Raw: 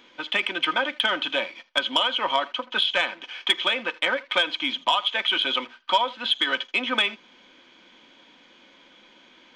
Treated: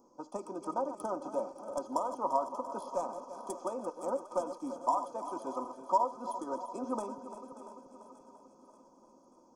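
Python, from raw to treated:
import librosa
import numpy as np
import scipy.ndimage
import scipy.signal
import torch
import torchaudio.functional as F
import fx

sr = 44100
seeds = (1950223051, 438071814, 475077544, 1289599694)

y = fx.reverse_delay_fb(x, sr, ms=171, feedback_pct=78, wet_db=-11.5)
y = scipy.signal.sosfilt(scipy.signal.cheby2(4, 40, [1600.0, 3900.0], 'bandstop', fs=sr, output='sos'), y)
y = fx.echo_thinned(y, sr, ms=584, feedback_pct=55, hz=630.0, wet_db=-14.5)
y = F.gain(torch.from_numpy(y), -5.0).numpy()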